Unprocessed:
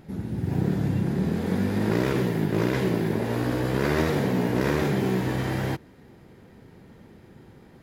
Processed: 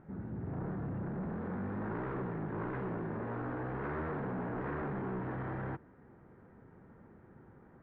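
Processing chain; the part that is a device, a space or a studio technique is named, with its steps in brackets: overdriven synthesiser ladder filter (saturation -26.5 dBFS, distortion -8 dB; four-pole ladder low-pass 1.7 kHz, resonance 40%)

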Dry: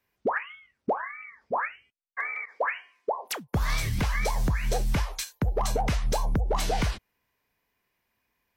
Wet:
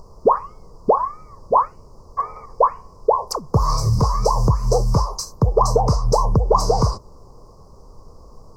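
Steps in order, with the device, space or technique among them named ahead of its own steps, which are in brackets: car interior (peaking EQ 120 Hz +8 dB; treble shelf 4.4 kHz -4 dB; brown noise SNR 20 dB); FFT filter 150 Hz 0 dB, 300 Hz -3 dB, 460 Hz +9 dB, 740 Hz +1 dB, 1.1 kHz +12 dB, 1.6 kHz -23 dB, 2.3 kHz -28 dB, 3.4 kHz -29 dB, 4.9 kHz +8 dB, 11 kHz -5 dB; trim +6 dB

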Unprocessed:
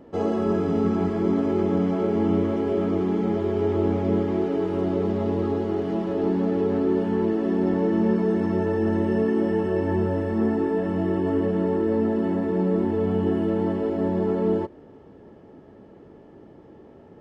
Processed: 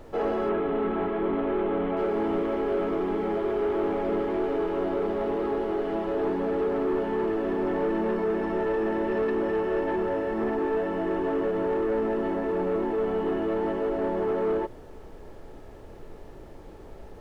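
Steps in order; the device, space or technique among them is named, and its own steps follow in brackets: aircraft cabin announcement (band-pass 410–3100 Hz; saturation -24 dBFS, distortion -16 dB; brown noise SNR 17 dB); 0.49–1.97 s: steep low-pass 3.7 kHz 36 dB/octave; trim +3.5 dB

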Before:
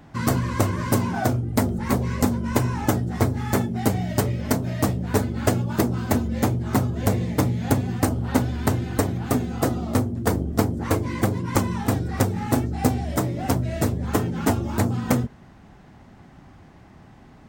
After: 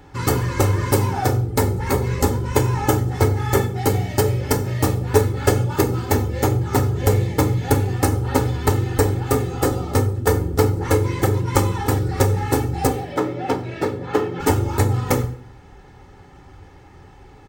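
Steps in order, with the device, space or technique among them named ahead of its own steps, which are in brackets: 12.87–14.40 s: three-band isolator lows -23 dB, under 150 Hz, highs -18 dB, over 4.4 kHz; microphone above a desk (comb 2.3 ms, depth 76%; reverberation RT60 0.55 s, pre-delay 3 ms, DRR 7 dB); trim +1.5 dB

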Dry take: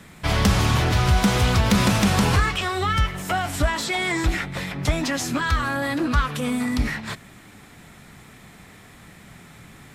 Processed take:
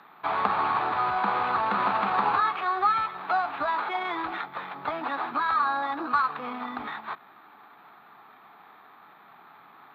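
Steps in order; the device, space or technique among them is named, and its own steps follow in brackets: toy sound module (decimation joined by straight lines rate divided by 8×; class-D stage that switches slowly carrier 12 kHz; cabinet simulation 510–4500 Hz, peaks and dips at 540 Hz -7 dB, 840 Hz +8 dB, 1.2 kHz +9 dB, 2 kHz -6 dB, 3 kHz -8 dB, 4.2 kHz +4 dB); trim -2.5 dB

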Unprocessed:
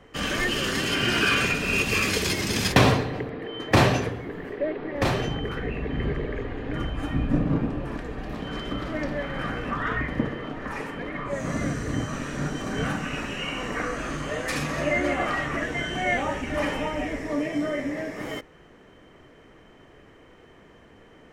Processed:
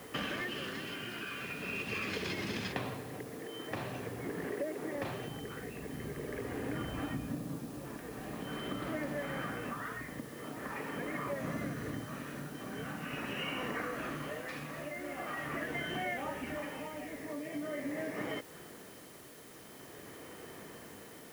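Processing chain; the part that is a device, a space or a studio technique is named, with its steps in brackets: medium wave at night (band-pass 110–3700 Hz; compression, threshold -38 dBFS, peak gain reduction 22 dB; tremolo 0.44 Hz, depth 50%; whistle 10 kHz -68 dBFS; white noise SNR 17 dB); trim +3 dB

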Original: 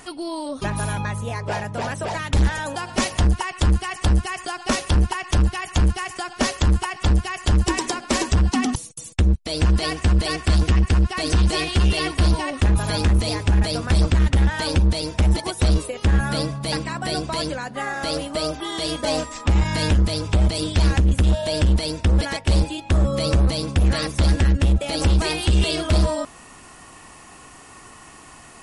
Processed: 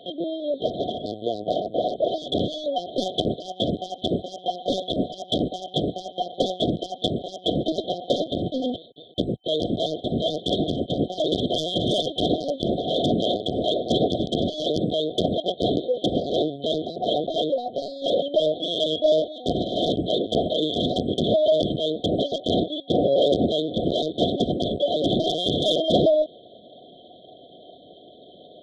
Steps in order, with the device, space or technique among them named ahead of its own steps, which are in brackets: talking toy (LPC vocoder at 8 kHz pitch kept; high-pass 370 Hz 12 dB/octave; peaking EQ 1.3 kHz +6.5 dB 0.36 oct; saturation -16.5 dBFS, distortion -19 dB); FFT band-reject 750–3100 Hz; trim +8.5 dB

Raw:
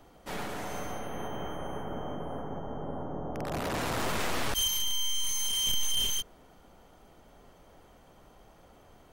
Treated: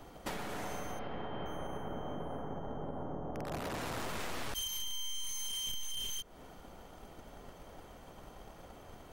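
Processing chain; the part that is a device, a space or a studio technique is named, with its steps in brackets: drum-bus smash (transient shaper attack +7 dB, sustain +1 dB; compression 10:1, threshold -39 dBFS, peak gain reduction 15.5 dB; saturation -30.5 dBFS, distortion -29 dB); 0.99–1.46 s: steep low-pass 5.3 kHz 96 dB/octave; trim +3.5 dB

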